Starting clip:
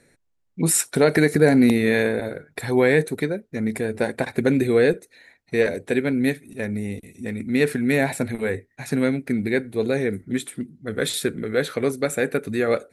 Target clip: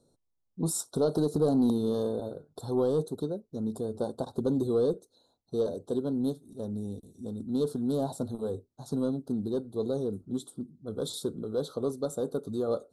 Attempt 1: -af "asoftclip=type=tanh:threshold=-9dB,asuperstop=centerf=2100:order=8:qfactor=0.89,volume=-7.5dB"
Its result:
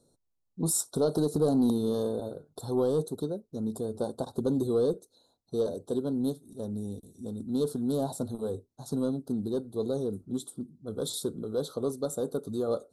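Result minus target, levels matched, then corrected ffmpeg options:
8,000 Hz band +4.0 dB
-af "asoftclip=type=tanh:threshold=-9dB,asuperstop=centerf=2100:order=8:qfactor=0.89,highshelf=frequency=7700:gain=-8,volume=-7.5dB"

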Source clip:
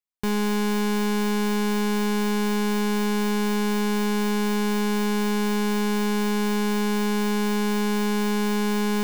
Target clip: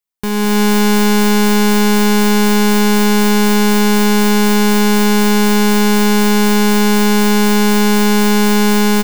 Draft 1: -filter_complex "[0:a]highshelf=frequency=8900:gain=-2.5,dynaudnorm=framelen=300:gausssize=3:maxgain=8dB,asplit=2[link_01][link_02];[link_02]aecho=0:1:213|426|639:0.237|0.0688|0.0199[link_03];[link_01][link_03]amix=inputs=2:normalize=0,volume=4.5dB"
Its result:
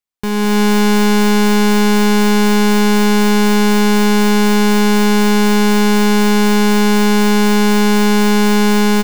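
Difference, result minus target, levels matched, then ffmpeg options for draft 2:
8,000 Hz band −2.5 dB
-filter_complex "[0:a]highshelf=frequency=8900:gain=5,dynaudnorm=framelen=300:gausssize=3:maxgain=8dB,asplit=2[link_01][link_02];[link_02]aecho=0:1:213|426|639:0.237|0.0688|0.0199[link_03];[link_01][link_03]amix=inputs=2:normalize=0,volume=4.5dB"

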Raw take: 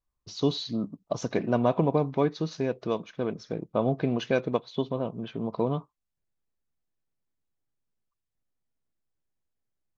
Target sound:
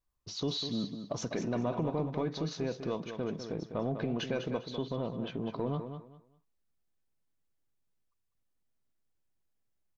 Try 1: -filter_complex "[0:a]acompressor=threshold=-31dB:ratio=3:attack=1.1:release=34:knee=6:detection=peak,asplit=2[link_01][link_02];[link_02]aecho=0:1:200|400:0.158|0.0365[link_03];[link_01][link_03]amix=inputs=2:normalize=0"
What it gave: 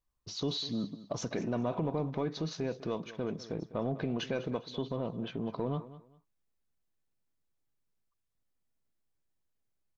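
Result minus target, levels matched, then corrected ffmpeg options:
echo-to-direct −7.5 dB
-filter_complex "[0:a]acompressor=threshold=-31dB:ratio=3:attack=1.1:release=34:knee=6:detection=peak,asplit=2[link_01][link_02];[link_02]aecho=0:1:200|400|600:0.376|0.0864|0.0199[link_03];[link_01][link_03]amix=inputs=2:normalize=0"

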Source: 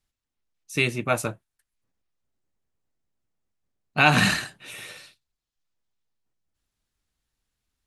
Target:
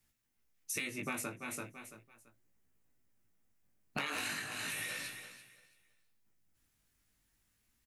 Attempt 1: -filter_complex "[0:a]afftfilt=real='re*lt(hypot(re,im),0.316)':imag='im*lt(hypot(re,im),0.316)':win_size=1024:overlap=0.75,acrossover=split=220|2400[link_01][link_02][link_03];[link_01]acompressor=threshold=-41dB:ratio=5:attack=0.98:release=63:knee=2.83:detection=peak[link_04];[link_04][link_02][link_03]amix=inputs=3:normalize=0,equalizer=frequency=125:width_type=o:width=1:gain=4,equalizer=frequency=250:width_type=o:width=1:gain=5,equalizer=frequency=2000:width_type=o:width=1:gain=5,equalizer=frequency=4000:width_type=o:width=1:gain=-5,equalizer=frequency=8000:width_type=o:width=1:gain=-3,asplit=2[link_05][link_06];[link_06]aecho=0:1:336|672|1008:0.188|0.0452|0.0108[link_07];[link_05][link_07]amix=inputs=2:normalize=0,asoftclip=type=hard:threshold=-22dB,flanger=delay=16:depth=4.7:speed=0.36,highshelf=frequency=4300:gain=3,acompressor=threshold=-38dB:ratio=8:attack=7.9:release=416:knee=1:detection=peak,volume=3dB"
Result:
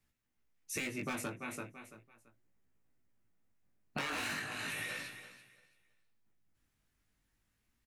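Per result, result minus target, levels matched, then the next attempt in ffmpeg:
hard clipping: distortion +18 dB; 8,000 Hz band −3.0 dB
-filter_complex "[0:a]afftfilt=real='re*lt(hypot(re,im),0.316)':imag='im*lt(hypot(re,im),0.316)':win_size=1024:overlap=0.75,acrossover=split=220|2400[link_01][link_02][link_03];[link_01]acompressor=threshold=-41dB:ratio=5:attack=0.98:release=63:knee=2.83:detection=peak[link_04];[link_04][link_02][link_03]amix=inputs=3:normalize=0,equalizer=frequency=125:width_type=o:width=1:gain=4,equalizer=frequency=250:width_type=o:width=1:gain=5,equalizer=frequency=2000:width_type=o:width=1:gain=5,equalizer=frequency=4000:width_type=o:width=1:gain=-5,equalizer=frequency=8000:width_type=o:width=1:gain=-3,asplit=2[link_05][link_06];[link_06]aecho=0:1:336|672|1008:0.188|0.0452|0.0108[link_07];[link_05][link_07]amix=inputs=2:normalize=0,asoftclip=type=hard:threshold=-13dB,flanger=delay=16:depth=4.7:speed=0.36,highshelf=frequency=4300:gain=3,acompressor=threshold=-38dB:ratio=8:attack=7.9:release=416:knee=1:detection=peak,volume=3dB"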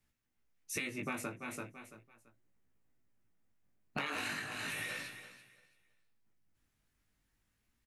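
8,000 Hz band −3.5 dB
-filter_complex "[0:a]afftfilt=real='re*lt(hypot(re,im),0.316)':imag='im*lt(hypot(re,im),0.316)':win_size=1024:overlap=0.75,acrossover=split=220|2400[link_01][link_02][link_03];[link_01]acompressor=threshold=-41dB:ratio=5:attack=0.98:release=63:knee=2.83:detection=peak[link_04];[link_04][link_02][link_03]amix=inputs=3:normalize=0,equalizer=frequency=125:width_type=o:width=1:gain=4,equalizer=frequency=250:width_type=o:width=1:gain=5,equalizer=frequency=2000:width_type=o:width=1:gain=5,equalizer=frequency=4000:width_type=o:width=1:gain=-5,equalizer=frequency=8000:width_type=o:width=1:gain=-3,asplit=2[link_05][link_06];[link_06]aecho=0:1:336|672|1008:0.188|0.0452|0.0108[link_07];[link_05][link_07]amix=inputs=2:normalize=0,asoftclip=type=hard:threshold=-13dB,flanger=delay=16:depth=4.7:speed=0.36,highshelf=frequency=4300:gain=12,acompressor=threshold=-38dB:ratio=8:attack=7.9:release=416:knee=1:detection=peak,volume=3dB"

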